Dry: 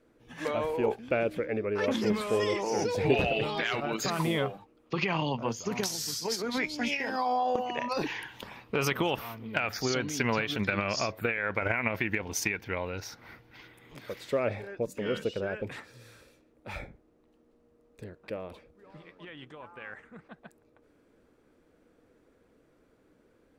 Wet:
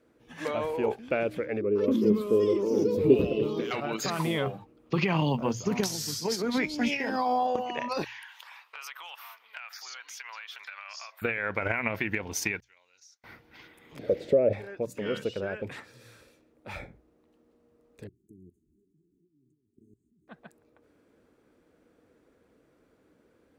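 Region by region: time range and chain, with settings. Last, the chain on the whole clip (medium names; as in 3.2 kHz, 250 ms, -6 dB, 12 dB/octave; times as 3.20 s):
1.61–3.71 s: FFT filter 140 Hz 0 dB, 230 Hz +6 dB, 360 Hz +8 dB, 510 Hz +2 dB, 770 Hz -18 dB, 1.1 kHz -4 dB, 1.7 kHz -18 dB, 3.1 kHz -9 dB, 9.2 kHz -11 dB, 13 kHz +2 dB + delay 827 ms -12.5 dB
4.46–7.47 s: bass shelf 360 Hz +8 dB + short-mantissa float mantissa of 6-bit
8.04–11.22 s: high-pass 940 Hz 24 dB/octave + compression 2.5:1, threshold -43 dBFS
12.60–13.24 s: expander -48 dBFS + band-pass filter 6.6 kHz, Q 4.6 + compression 2.5:1, threshold -55 dBFS
13.99–14.53 s: low-pass 3.2 kHz 6 dB/octave + compression 4:1, threshold -35 dBFS + resonant low shelf 760 Hz +11 dB, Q 3
18.07–20.28 s: level held to a coarse grid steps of 22 dB + brick-wall FIR band-stop 420–6200 Hz
whole clip: high-pass 43 Hz; hum notches 60/120 Hz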